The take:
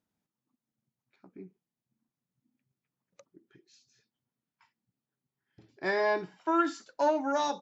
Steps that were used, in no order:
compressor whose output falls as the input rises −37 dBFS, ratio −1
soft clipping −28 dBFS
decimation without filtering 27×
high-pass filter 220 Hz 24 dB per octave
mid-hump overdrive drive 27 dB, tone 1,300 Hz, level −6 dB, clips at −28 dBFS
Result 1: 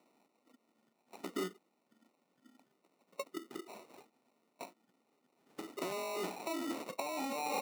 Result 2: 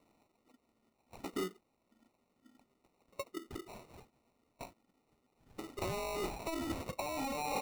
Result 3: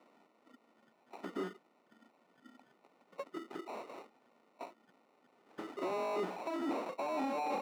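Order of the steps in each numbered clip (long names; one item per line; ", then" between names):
soft clipping, then mid-hump overdrive, then decimation without filtering, then compressor whose output falls as the input rises, then high-pass filter
soft clipping, then high-pass filter, then mid-hump overdrive, then compressor whose output falls as the input rises, then decimation without filtering
compressor whose output falls as the input rises, then decimation without filtering, then mid-hump overdrive, then soft clipping, then high-pass filter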